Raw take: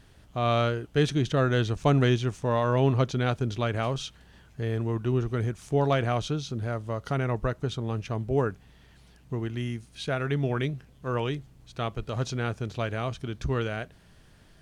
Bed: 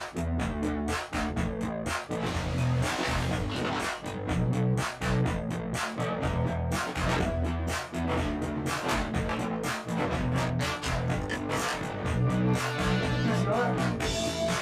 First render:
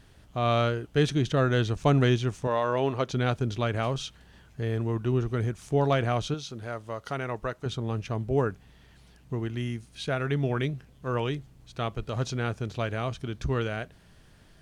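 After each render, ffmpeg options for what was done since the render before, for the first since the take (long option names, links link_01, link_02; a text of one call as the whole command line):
ffmpeg -i in.wav -filter_complex "[0:a]asettb=1/sr,asplit=3[link_01][link_02][link_03];[link_01]atrim=end=2.474[link_04];[link_02]atrim=start=2.47:end=3.1,asetpts=PTS-STARTPTS,afade=type=in:duration=0.004:curve=qsin,afade=type=out:start_time=0.626:duration=0.004:curve=qsin,bass=frequency=250:gain=-11,treble=frequency=4000:gain=-2[link_05];[link_03]atrim=start=3.096[link_06];[link_04][link_05]acrossfade=duration=0.004:curve1=hsin:curve2=qsin[link_07];[link_07][link_06]acrossfade=duration=0.004:curve1=qsin:curve2=hsin,asettb=1/sr,asplit=3[link_08][link_09][link_10];[link_08]atrim=end=6.344[link_11];[link_09]atrim=start=6.34:end=7.66,asetpts=PTS-STARTPTS,afade=type=in:duration=0.004:curve=qsin,afade=type=out:start_time=1.316:duration=0.004:curve=qsin,lowshelf=frequency=300:gain=-10.5[link_12];[link_10]atrim=start=7.656[link_13];[link_11][link_12]acrossfade=duration=0.004:curve1=hsin:curve2=qsin[link_14];[link_14][link_13]acrossfade=duration=0.004:curve1=qsin:curve2=hsin" out.wav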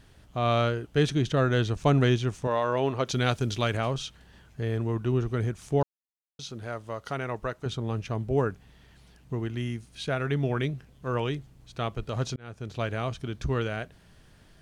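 ffmpeg -i in.wav -filter_complex "[0:a]asettb=1/sr,asplit=3[link_01][link_02][link_03];[link_01]atrim=end=3.064[link_04];[link_02]atrim=start=3.06:end=3.77,asetpts=PTS-STARTPTS,afade=type=in:duration=0.004:curve=qsin,afade=type=out:start_time=0.706:duration=0.004:curve=qsin,highshelf=frequency=2500:gain=9.5[link_05];[link_03]atrim=start=3.766[link_06];[link_04][link_05]acrossfade=duration=0.004:curve1=hsin:curve2=qsin[link_07];[link_07][link_06]acrossfade=duration=0.004:curve1=qsin:curve2=hsin,asplit=4[link_08][link_09][link_10][link_11];[link_08]atrim=end=5.83,asetpts=PTS-STARTPTS,afade=type=out:start_time=5.826:duration=0.004:curve=hsin[link_12];[link_09]atrim=start=5.83:end=6.39,asetpts=PTS-STARTPTS,volume=0[link_13];[link_10]atrim=start=6.39:end=12.36,asetpts=PTS-STARTPTS,afade=type=in:duration=0.004:curve=hsin,afade=type=out:start_time=5.966:duration=0.004:curve=hsin[link_14];[link_11]atrim=start=12.36,asetpts=PTS-STARTPTS,afade=type=in:duration=0.47[link_15];[link_12][link_13][link_14][link_15]concat=n=4:v=0:a=1" out.wav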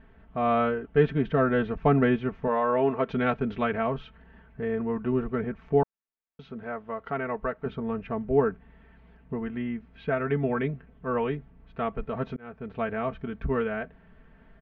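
ffmpeg -i in.wav -af "lowpass=frequency=2200:width=0.5412,lowpass=frequency=2200:width=1.3066,aecho=1:1:4.5:0.79" out.wav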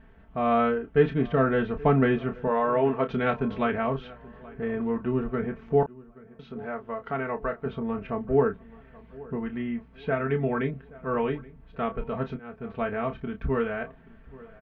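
ffmpeg -i in.wav -filter_complex "[0:a]asplit=2[link_01][link_02];[link_02]adelay=30,volume=-9dB[link_03];[link_01][link_03]amix=inputs=2:normalize=0,asplit=2[link_04][link_05];[link_05]adelay=827,lowpass=frequency=2200:poles=1,volume=-20.5dB,asplit=2[link_06][link_07];[link_07]adelay=827,lowpass=frequency=2200:poles=1,volume=0.42,asplit=2[link_08][link_09];[link_09]adelay=827,lowpass=frequency=2200:poles=1,volume=0.42[link_10];[link_04][link_06][link_08][link_10]amix=inputs=4:normalize=0" out.wav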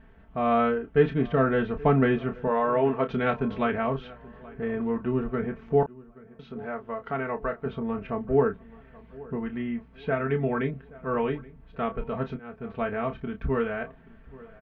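ffmpeg -i in.wav -af anull out.wav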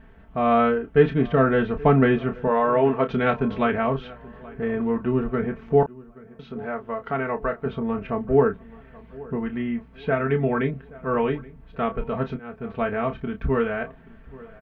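ffmpeg -i in.wav -af "volume=4dB" out.wav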